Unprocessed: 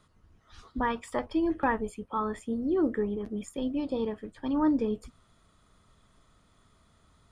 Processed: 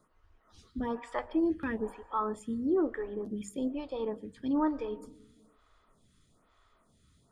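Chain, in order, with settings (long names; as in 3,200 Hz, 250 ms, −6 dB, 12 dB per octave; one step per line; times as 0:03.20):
mains-hum notches 50/100/150/200 Hz
on a send at −20.5 dB: convolution reverb RT60 1.4 s, pre-delay 97 ms
on the sum: phaser with staggered stages 1.1 Hz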